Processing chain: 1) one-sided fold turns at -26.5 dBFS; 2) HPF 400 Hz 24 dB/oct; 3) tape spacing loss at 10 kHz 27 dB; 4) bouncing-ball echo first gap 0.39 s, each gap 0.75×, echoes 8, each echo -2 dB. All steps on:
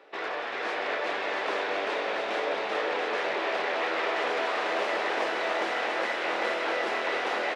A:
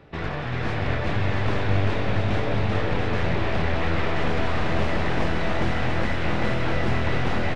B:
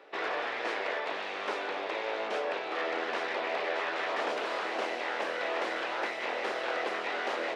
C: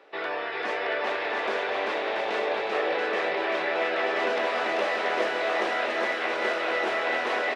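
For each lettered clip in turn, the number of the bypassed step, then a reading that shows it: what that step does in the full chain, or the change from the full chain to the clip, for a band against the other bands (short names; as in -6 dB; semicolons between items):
2, 250 Hz band +12.5 dB; 4, loudness change -4.0 LU; 1, 4 kHz band -1.5 dB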